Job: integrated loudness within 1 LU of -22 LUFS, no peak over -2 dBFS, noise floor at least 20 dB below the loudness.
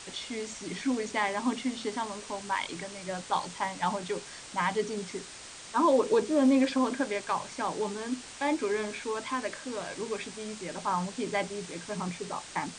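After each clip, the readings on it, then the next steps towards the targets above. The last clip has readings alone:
noise floor -46 dBFS; noise floor target -52 dBFS; loudness -31.5 LUFS; peak level -14.5 dBFS; loudness target -22.0 LUFS
-> noise print and reduce 6 dB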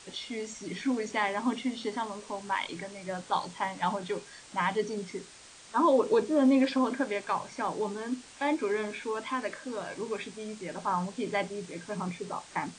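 noise floor -52 dBFS; loudness -31.5 LUFS; peak level -14.5 dBFS; loudness target -22.0 LUFS
-> trim +9.5 dB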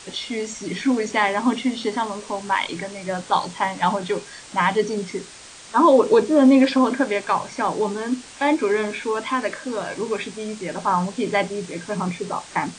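loudness -22.0 LUFS; peak level -5.0 dBFS; noise floor -42 dBFS

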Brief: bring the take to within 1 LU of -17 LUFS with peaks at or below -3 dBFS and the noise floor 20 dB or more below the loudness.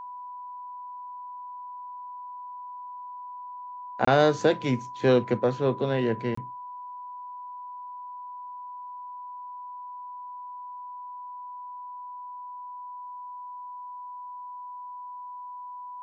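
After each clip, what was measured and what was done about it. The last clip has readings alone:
dropouts 2; longest dropout 24 ms; steady tone 990 Hz; tone level -37 dBFS; loudness -32.0 LUFS; peak level -7.5 dBFS; loudness target -17.0 LUFS
-> interpolate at 4.05/6.35 s, 24 ms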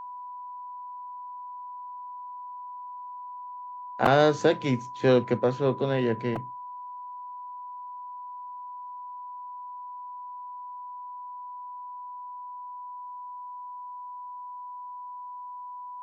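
dropouts 0; steady tone 990 Hz; tone level -37 dBFS
-> band-stop 990 Hz, Q 30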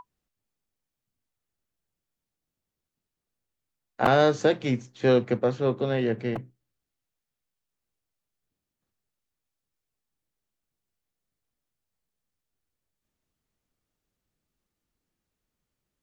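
steady tone not found; loudness -24.5 LUFS; peak level -7.5 dBFS; loudness target -17.0 LUFS
-> trim +7.5 dB; peak limiter -3 dBFS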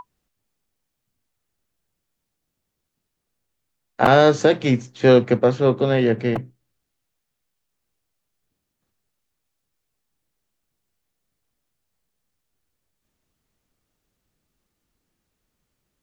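loudness -17.5 LUFS; peak level -3.0 dBFS; noise floor -79 dBFS

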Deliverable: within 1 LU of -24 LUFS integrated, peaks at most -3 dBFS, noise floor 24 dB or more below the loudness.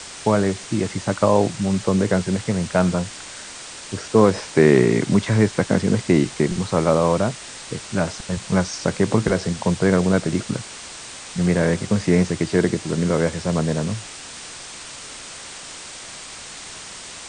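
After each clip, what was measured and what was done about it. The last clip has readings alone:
noise floor -37 dBFS; noise floor target -45 dBFS; loudness -20.5 LUFS; peak level -2.0 dBFS; loudness target -24.0 LUFS
-> noise reduction 8 dB, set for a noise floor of -37 dBFS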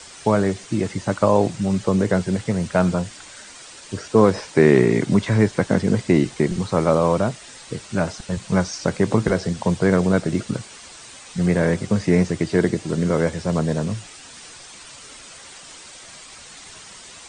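noise floor -42 dBFS; noise floor target -45 dBFS
-> noise reduction 6 dB, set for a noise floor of -42 dBFS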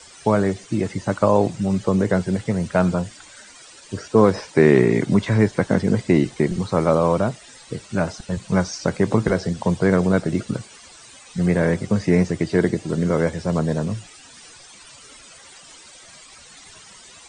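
noise floor -46 dBFS; loudness -20.5 LUFS; peak level -2.0 dBFS; loudness target -24.0 LUFS
-> trim -3.5 dB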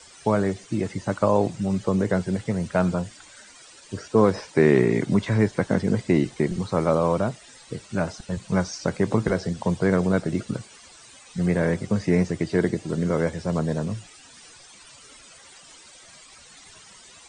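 loudness -24.0 LUFS; peak level -5.5 dBFS; noise floor -49 dBFS

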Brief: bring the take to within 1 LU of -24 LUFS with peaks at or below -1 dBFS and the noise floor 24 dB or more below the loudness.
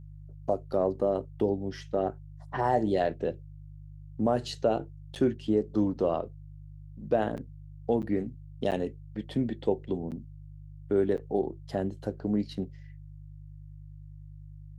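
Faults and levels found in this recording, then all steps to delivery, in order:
dropouts 6; longest dropout 8.3 ms; hum 50 Hz; highest harmonic 150 Hz; hum level -43 dBFS; loudness -30.5 LUFS; peak level -13.0 dBFS; loudness target -24.0 LUFS
-> interpolate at 5.15/7.37/8.02/8.71/10.11/11.17 s, 8.3 ms; de-hum 50 Hz, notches 3; trim +6.5 dB

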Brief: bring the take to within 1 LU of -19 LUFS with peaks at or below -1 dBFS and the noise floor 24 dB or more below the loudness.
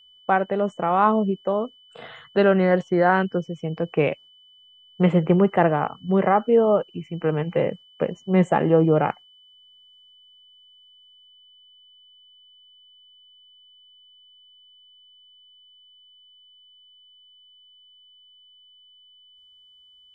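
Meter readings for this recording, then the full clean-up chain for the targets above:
steady tone 3 kHz; tone level -51 dBFS; loudness -21.5 LUFS; peak level -5.0 dBFS; loudness target -19.0 LUFS
-> band-stop 3 kHz, Q 30; trim +2.5 dB

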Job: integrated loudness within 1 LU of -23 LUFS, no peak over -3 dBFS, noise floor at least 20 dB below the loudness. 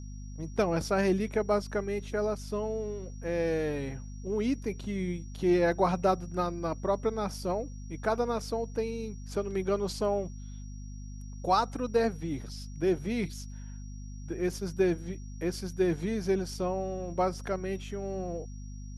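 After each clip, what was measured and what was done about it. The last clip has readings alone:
hum 50 Hz; highest harmonic 250 Hz; hum level -39 dBFS; steady tone 5.7 kHz; tone level -57 dBFS; loudness -31.5 LUFS; peak level -12.5 dBFS; loudness target -23.0 LUFS
-> hum notches 50/100/150/200/250 Hz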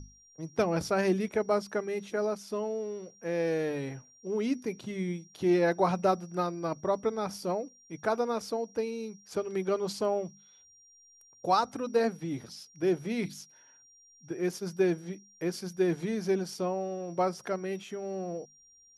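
hum not found; steady tone 5.7 kHz; tone level -57 dBFS
-> band-stop 5.7 kHz, Q 30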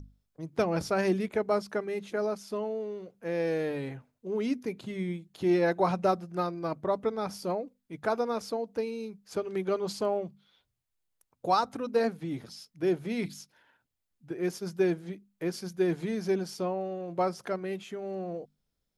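steady tone not found; loudness -31.5 LUFS; peak level -13.0 dBFS; loudness target -23.0 LUFS
-> trim +8.5 dB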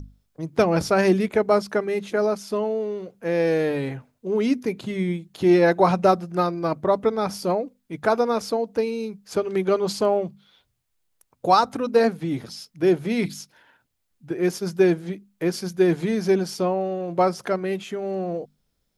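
loudness -23.0 LUFS; peak level -4.5 dBFS; noise floor -73 dBFS

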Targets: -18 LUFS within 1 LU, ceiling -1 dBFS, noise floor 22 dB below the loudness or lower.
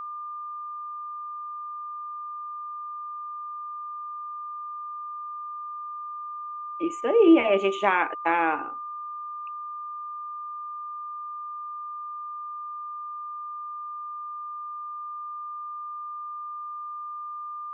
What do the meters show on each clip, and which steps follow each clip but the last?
steady tone 1.2 kHz; tone level -33 dBFS; loudness -30.0 LUFS; peak level -7.0 dBFS; loudness target -18.0 LUFS
-> band-stop 1.2 kHz, Q 30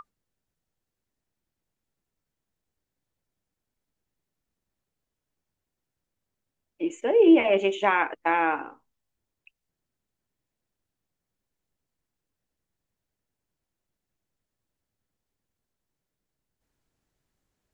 steady tone not found; loudness -22.5 LUFS; peak level -7.5 dBFS; loudness target -18.0 LUFS
-> trim +4.5 dB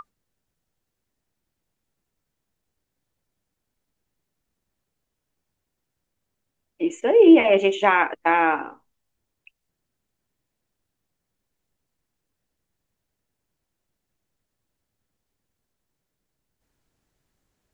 loudness -18.0 LUFS; peak level -3.0 dBFS; noise floor -81 dBFS

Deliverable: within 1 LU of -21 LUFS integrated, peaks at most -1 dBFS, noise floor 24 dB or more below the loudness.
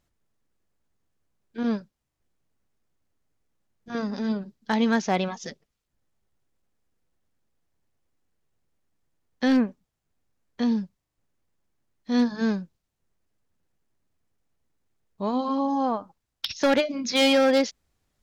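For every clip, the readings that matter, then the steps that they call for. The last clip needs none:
clipped samples 0.5%; clipping level -15.0 dBFS; loudness -25.5 LUFS; peak level -15.0 dBFS; loudness target -21.0 LUFS
-> clip repair -15 dBFS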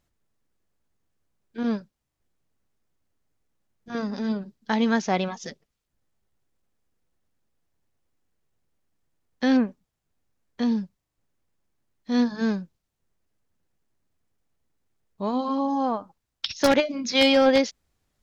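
clipped samples 0.0%; loudness -24.5 LUFS; peak level -6.0 dBFS; loudness target -21.0 LUFS
-> trim +3.5 dB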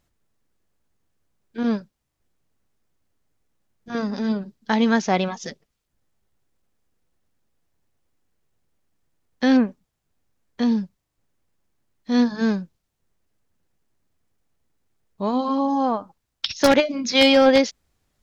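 loudness -21.0 LUFS; peak level -2.5 dBFS; noise floor -78 dBFS

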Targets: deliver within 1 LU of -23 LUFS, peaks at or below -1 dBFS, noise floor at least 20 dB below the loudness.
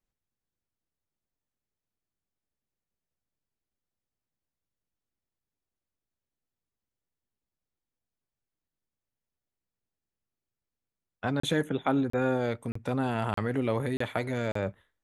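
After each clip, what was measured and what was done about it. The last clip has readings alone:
dropouts 6; longest dropout 34 ms; loudness -30.0 LUFS; peak level -13.5 dBFS; loudness target -23.0 LUFS
-> interpolate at 11.40/12.10/12.72/13.34/13.97/14.52 s, 34 ms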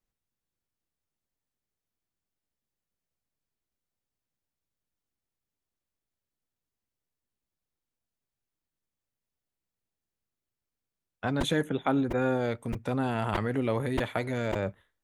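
dropouts 0; loudness -30.0 LUFS; peak level -13.5 dBFS; loudness target -23.0 LUFS
-> trim +7 dB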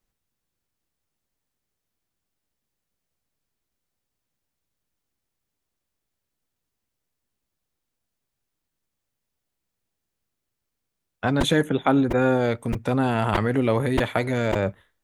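loudness -23.0 LUFS; peak level -6.5 dBFS; noise floor -82 dBFS

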